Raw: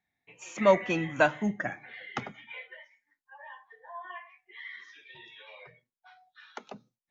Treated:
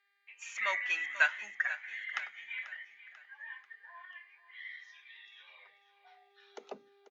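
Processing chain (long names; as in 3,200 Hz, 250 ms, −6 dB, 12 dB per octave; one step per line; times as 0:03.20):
0:04.05–0:06.63: parametric band 1,200 Hz −11 dB 1.8 octaves
hum with harmonics 400 Hz, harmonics 12, −67 dBFS −8 dB per octave
high-pass filter sweep 1,800 Hz → 280 Hz, 0:05.11–0:07.02
on a send: repeating echo 490 ms, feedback 47%, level −15 dB
on the sum: level −3.5 dB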